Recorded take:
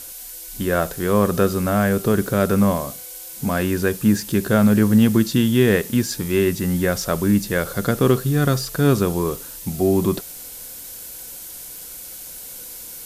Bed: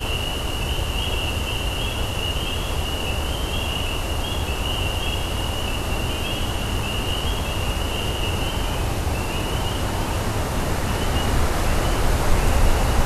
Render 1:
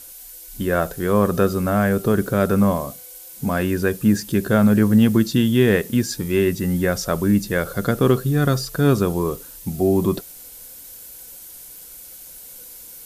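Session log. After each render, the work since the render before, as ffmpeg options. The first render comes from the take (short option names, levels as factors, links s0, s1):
-af "afftdn=nr=6:nf=-36"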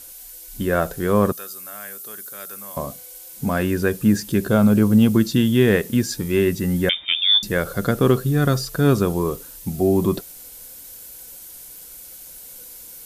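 -filter_complex "[0:a]asettb=1/sr,asplit=3[s0][s1][s2];[s0]atrim=end=1.324[s3];[s1]atrim=start=1.32:end=2.77,asetpts=PTS-STARTPTS,afade=t=in:d=0.004:c=qsin,afade=t=out:st=1.446:d=0.004:c=qsin,aderivative[s4];[s2]atrim=start=2.766[s5];[s3][s4]acrossfade=d=0.004:c1=hsin:c2=qsin[s6];[s6][s5]acrossfade=d=0.004:c1=qsin:c2=hsin,asettb=1/sr,asplit=3[s7][s8][s9];[s7]atrim=end=4.484[s10];[s8]atrim=start=4.48:end=5.16,asetpts=PTS-STARTPTS,afade=t=in:d=0.004:c=qsin,afade=t=out:st=0.676:d=0.004:c=qsin,equalizer=f=1800:w=5.1:g=-12[s11];[s9]atrim=start=5.156[s12];[s10][s11]acrossfade=d=0.004:c1=hsin:c2=qsin[s13];[s13][s12]acrossfade=d=0.004:c1=qsin:c2=hsin,asettb=1/sr,asplit=3[s14][s15][s16];[s14]atrim=end=6.894[s17];[s15]atrim=start=6.89:end=7.43,asetpts=PTS-STARTPTS,afade=t=in:d=0.004:c=qsin,afade=t=out:st=0.536:d=0.004:c=qsin,lowpass=f=3100:t=q:w=0.5098,lowpass=f=3100:t=q:w=0.6013,lowpass=f=3100:t=q:w=0.9,lowpass=f=3100:t=q:w=2.563,afreqshift=-3700[s18];[s16]atrim=start=7.426[s19];[s17][s18]acrossfade=d=0.004:c1=hsin:c2=qsin[s20];[s20][s19]acrossfade=d=0.004:c1=qsin:c2=hsin"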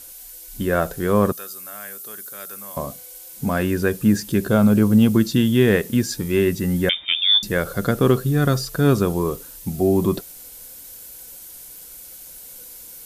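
-af anull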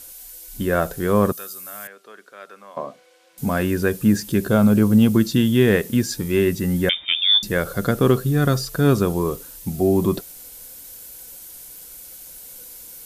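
-filter_complex "[0:a]asettb=1/sr,asplit=3[s0][s1][s2];[s0]atrim=end=1.874[s3];[s1]atrim=start=1.87:end=3.38,asetpts=PTS-STARTPTS,afade=t=in:d=0.004:c=qsin,afade=t=out:st=1.506:d=0.004:c=qsin,highpass=310,lowpass=2600[s4];[s2]atrim=start=3.376[s5];[s3][s4]acrossfade=d=0.004:c1=hsin:c2=qsin[s6];[s6][s5]acrossfade=d=0.004:c1=qsin:c2=hsin"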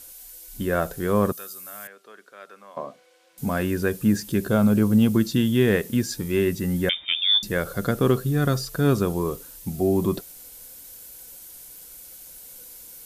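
-af "volume=0.668"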